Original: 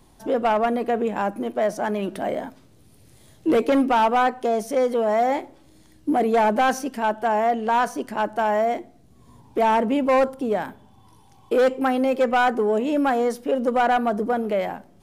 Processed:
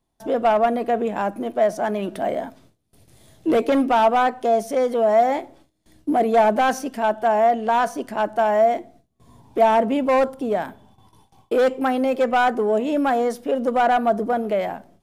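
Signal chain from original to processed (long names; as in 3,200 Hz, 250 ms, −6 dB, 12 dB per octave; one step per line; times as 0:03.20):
noise gate with hold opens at −42 dBFS
hollow resonant body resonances 670/3,500 Hz, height 7 dB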